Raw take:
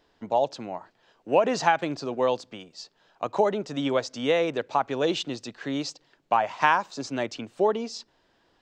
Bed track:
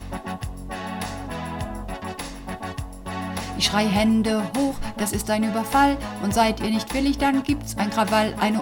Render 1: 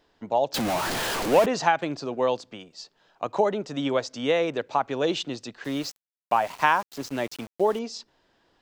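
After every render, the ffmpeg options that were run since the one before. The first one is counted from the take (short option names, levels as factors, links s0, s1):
-filter_complex "[0:a]asettb=1/sr,asplit=3[s0][s1][s2];[s0]atrim=end=0.544[s3];[s1]atrim=start=0.54:end=1.46,asetpts=PTS-STARTPTS,afade=t=in:d=0.004:c=qsin,afade=t=out:st=0.916:d=0.004:c=qsin,aeval=exprs='val(0)+0.5*0.0794*sgn(val(0))':c=same[s4];[s2]atrim=start=1.456[s5];[s3][s4]acrossfade=d=0.004:c1=hsin:c2=qsin[s6];[s6][s5]acrossfade=d=0.004:c1=qsin:c2=hsin,asettb=1/sr,asplit=3[s7][s8][s9];[s7]atrim=end=5.644[s10];[s8]atrim=start=5.64:end=7.79,asetpts=PTS-STARTPTS,afade=t=in:d=0.004:c=qsin,afade=t=out:st=2.146:d=0.004:c=qsin,aeval=exprs='val(0)*gte(abs(val(0)),0.0126)':c=same[s11];[s9]atrim=start=7.786[s12];[s10][s11]acrossfade=d=0.004:c1=hsin:c2=qsin[s13];[s13][s12]acrossfade=d=0.004:c1=qsin:c2=hsin"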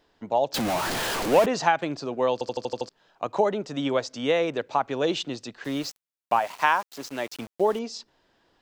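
-filter_complex "[0:a]asettb=1/sr,asplit=3[s0][s1][s2];[s0]atrim=end=6.394[s3];[s1]atrim=start=6.39:end=7.34,asetpts=PTS-STARTPTS,afade=t=in:d=0.004:c=qsin,afade=t=out:st=0.946:d=0.004:c=qsin,lowshelf=f=240:g=-11.5[s4];[s2]atrim=start=7.336[s5];[s3][s4]acrossfade=d=0.004:c1=hsin:c2=qsin[s6];[s6][s5]acrossfade=d=0.004:c1=qsin:c2=hsin,asplit=8[s7][s8][s9][s10][s11][s12][s13][s14];[s7]atrim=end=2.412[s15];[s8]atrim=start=2.328:end=2.412[s16];[s9]atrim=start=2.328:end=2.412[s17];[s10]atrim=start=2.328:end=2.412[s18];[s11]atrim=start=2.328:end=2.412[s19];[s12]atrim=start=2.328:end=2.412[s20];[s13]atrim=start=2.328:end=2.412[s21];[s14]atrim=start=2.888[s22];[s15][s16]acrossfade=d=0.004:c1=hsin:c2=hsin[s23];[s23][s17]acrossfade=d=0.004:c1=hsin:c2=hsin[s24];[s24][s18]acrossfade=d=0.004:c1=hsin:c2=hsin[s25];[s25][s19]acrossfade=d=0.004:c1=hsin:c2=hsin[s26];[s26][s20]acrossfade=d=0.004:c1=hsin:c2=hsin[s27];[s27][s21]acrossfade=d=0.004:c1=hsin:c2=hsin[s28];[s28][s22]acrossfade=d=0.004:c1=hsin:c2=hsin"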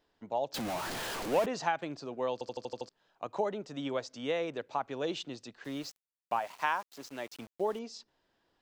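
-af "volume=0.335"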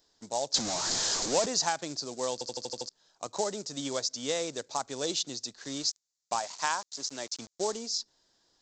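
-af "aresample=16000,acrusher=bits=5:mode=log:mix=0:aa=0.000001,aresample=44100,aexciter=amount=10.5:drive=1.1:freq=4000"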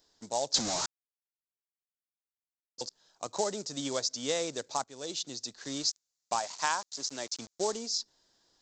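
-filter_complex "[0:a]asplit=4[s0][s1][s2][s3];[s0]atrim=end=0.86,asetpts=PTS-STARTPTS,afade=t=out:st=0.856:d=0.004:c=hsin[s4];[s1]atrim=start=0.86:end=2.78,asetpts=PTS-STARTPTS,volume=0[s5];[s2]atrim=start=2.78:end=4.84,asetpts=PTS-STARTPTS,afade=t=in:d=0.004:c=hsin,afade=t=out:st=2.056:d=0.004:c=hsin:silence=0.199526[s6];[s3]atrim=start=4.84,asetpts=PTS-STARTPTS,afade=t=in:d=0.72:silence=0.199526[s7];[s4][s5][s6][s7]concat=n=4:v=0:a=1"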